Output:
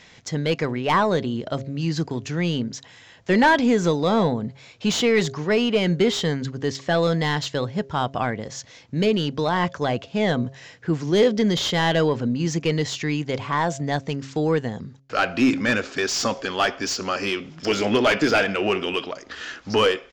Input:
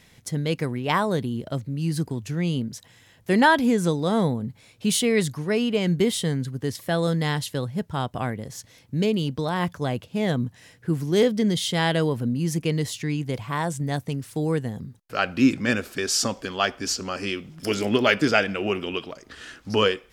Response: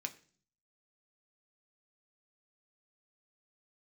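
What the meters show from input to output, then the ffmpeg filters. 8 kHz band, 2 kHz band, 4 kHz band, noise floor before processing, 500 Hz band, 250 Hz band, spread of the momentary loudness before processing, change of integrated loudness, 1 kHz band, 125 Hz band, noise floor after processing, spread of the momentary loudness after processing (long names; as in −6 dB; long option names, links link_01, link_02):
−1.5 dB, +2.5 dB, +2.5 dB, −56 dBFS, +3.5 dB, +1.0 dB, 11 LU, +2.0 dB, +3.5 dB, 0.0 dB, −49 dBFS, 10 LU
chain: -filter_complex "[0:a]aresample=16000,aresample=44100,highshelf=frequency=3200:gain=12,bandreject=frequency=135.5:width_type=h:width=4,bandreject=frequency=271:width_type=h:width=4,bandreject=frequency=406.5:width_type=h:width=4,bandreject=frequency=542:width_type=h:width=4,bandreject=frequency=677.5:width_type=h:width=4,aeval=exprs='0.944*sin(PI/2*2.24*val(0)/0.944)':channel_layout=same,asplit=2[link_01][link_02];[link_02]highpass=frequency=720:poles=1,volume=11dB,asoftclip=type=tanh:threshold=-0.5dB[link_03];[link_01][link_03]amix=inputs=2:normalize=0,lowpass=frequency=1100:poles=1,volume=-6dB,volume=-7dB"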